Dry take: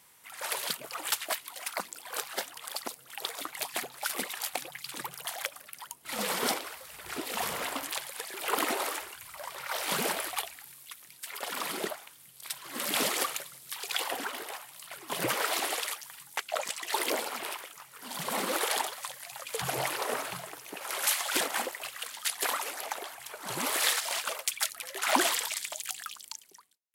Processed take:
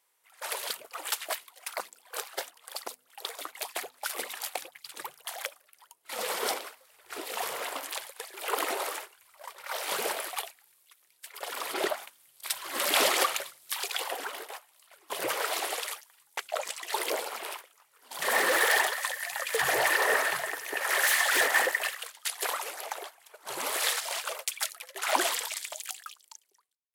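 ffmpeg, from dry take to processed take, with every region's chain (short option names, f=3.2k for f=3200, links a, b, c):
-filter_complex "[0:a]asettb=1/sr,asplit=3[a][b][c];[a]atrim=end=11.744[d];[b]atrim=start=11.74:end=13.88,asetpts=PTS-STARTPTS,afade=t=in:d=0.004:c=qsin,afade=t=out:st=2.136:d=0.004:c=qsin,bandreject=f=460:w=7,acontrast=84,adynamicequalizer=threshold=0.0112:dfrequency=5600:dqfactor=0.7:tfrequency=5600:tqfactor=0.7:attack=5:release=100:ratio=0.375:range=3:mode=cutabove:tftype=highshelf[e];[c]atrim=start=13.876[f];[d][e]acrossfade=d=0.004:c1=hsin:c2=qsin[g];[g][f]acrossfade=d=0.004:c1=qsin:c2=hsin,asettb=1/sr,asplit=3[h][i][j];[h]atrim=end=18.224[k];[i]atrim=start=18.22:end=21.95,asetpts=PTS-STARTPTS,afade=t=in:d=0.004:c=qsin,afade=t=out:st=3.726:d=0.004:c=qsin,volume=30dB,asoftclip=hard,volume=-30dB,equalizer=f=1.8k:t=o:w=0.25:g=15,acontrast=84[l];[j]atrim=start=21.946[m];[k][l]acrossfade=d=0.004:c1=hsin:c2=qsin[n];[n][m]acrossfade=d=0.004:c1=qsin:c2=hsin,agate=range=-12dB:threshold=-40dB:ratio=16:detection=peak,lowshelf=f=300:t=q:w=1.5:g=-11,bandreject=f=50.69:t=h:w=4,bandreject=f=101.38:t=h:w=4,bandreject=f=152.07:t=h:w=4,bandreject=f=202.76:t=h:w=4,bandreject=f=253.45:t=h:w=4,volume=-1.5dB"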